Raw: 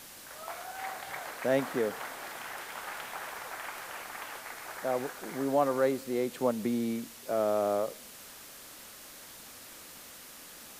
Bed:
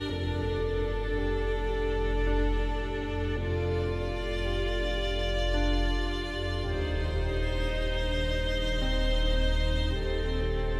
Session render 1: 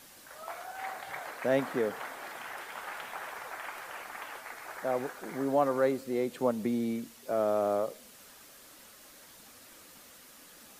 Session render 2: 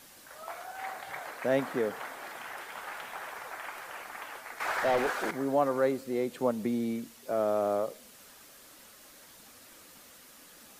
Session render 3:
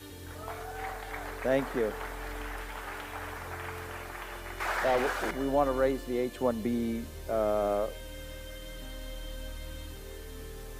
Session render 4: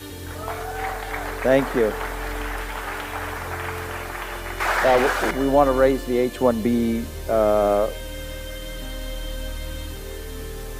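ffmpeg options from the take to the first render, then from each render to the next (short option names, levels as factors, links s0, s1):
-af "afftdn=nr=6:nf=-49"
-filter_complex "[0:a]asettb=1/sr,asplit=3[s0][s1][s2];[s0]atrim=end=2.774[s3];[s1]atrim=start=2.77:end=3.29,asetpts=PTS-STARTPTS,afade=t=in:d=0.004:c=qsin,afade=t=out:st=0.516:d=0.004:c=qsin,asoftclip=type=hard:threshold=0.0266[s4];[s2]atrim=start=3.286[s5];[s3][s4]acrossfade=d=0.004:c1=hsin:c2=qsin[s6];[s6][s5]acrossfade=d=0.004:c1=qsin:c2=hsin,asettb=1/sr,asplit=3[s7][s8][s9];[s7]atrim=end=4.604[s10];[s8]atrim=start=4.6:end=5.31,asetpts=PTS-STARTPTS,afade=t=in:d=0.004:c=qsin,afade=t=out:st=0.706:d=0.004:c=qsin,asplit=2[s11][s12];[s12]highpass=f=720:p=1,volume=12.6,asoftclip=type=tanh:threshold=0.112[s13];[s11][s13]amix=inputs=2:normalize=0,lowpass=f=3400:p=1,volume=0.501[s14];[s9]atrim=start=5.306[s15];[s10][s14]acrossfade=d=0.004:c1=hsin:c2=qsin[s16];[s16][s15]acrossfade=d=0.004:c1=qsin:c2=hsin"
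-filter_complex "[1:a]volume=0.188[s0];[0:a][s0]amix=inputs=2:normalize=0"
-af "volume=3.16"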